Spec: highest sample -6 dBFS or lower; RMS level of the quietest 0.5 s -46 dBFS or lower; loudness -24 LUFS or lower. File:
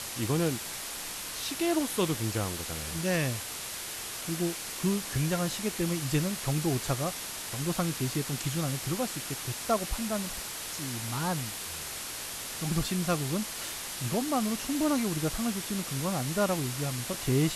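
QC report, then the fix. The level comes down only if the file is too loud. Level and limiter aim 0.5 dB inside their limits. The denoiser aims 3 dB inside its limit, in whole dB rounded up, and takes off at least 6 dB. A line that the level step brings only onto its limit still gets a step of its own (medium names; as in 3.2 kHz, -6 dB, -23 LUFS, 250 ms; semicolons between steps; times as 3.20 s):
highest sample -14.5 dBFS: pass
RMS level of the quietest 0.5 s -38 dBFS: fail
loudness -31.0 LUFS: pass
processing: noise reduction 11 dB, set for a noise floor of -38 dBFS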